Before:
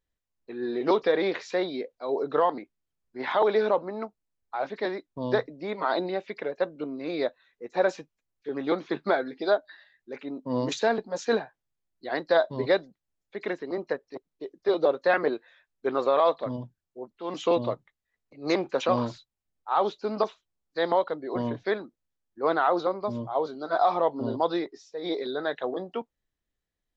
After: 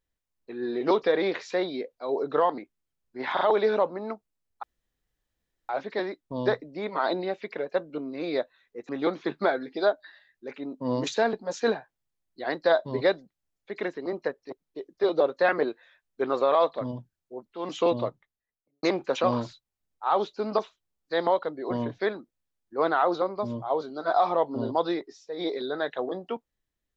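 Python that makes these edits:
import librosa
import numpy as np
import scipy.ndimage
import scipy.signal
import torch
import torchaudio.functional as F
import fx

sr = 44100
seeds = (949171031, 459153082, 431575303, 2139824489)

y = fx.studio_fade_out(x, sr, start_s=17.64, length_s=0.84)
y = fx.edit(y, sr, fx.stutter(start_s=3.33, slice_s=0.04, count=3),
    fx.insert_room_tone(at_s=4.55, length_s=1.06),
    fx.cut(start_s=7.75, length_s=0.79), tone=tone)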